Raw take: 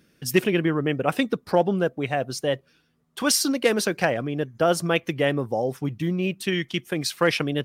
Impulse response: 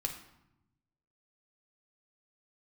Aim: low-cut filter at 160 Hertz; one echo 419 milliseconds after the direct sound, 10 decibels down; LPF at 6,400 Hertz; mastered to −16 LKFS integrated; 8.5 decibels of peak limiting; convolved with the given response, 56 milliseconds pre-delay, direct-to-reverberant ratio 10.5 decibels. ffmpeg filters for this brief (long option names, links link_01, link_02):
-filter_complex "[0:a]highpass=160,lowpass=6400,alimiter=limit=-13.5dB:level=0:latency=1,aecho=1:1:419:0.316,asplit=2[link_01][link_02];[1:a]atrim=start_sample=2205,adelay=56[link_03];[link_02][link_03]afir=irnorm=-1:irlink=0,volume=-12dB[link_04];[link_01][link_04]amix=inputs=2:normalize=0,volume=10dB"